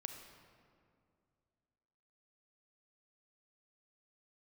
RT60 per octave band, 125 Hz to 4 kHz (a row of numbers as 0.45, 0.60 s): 2.8, 2.7, 2.5, 2.2, 1.7, 1.3 s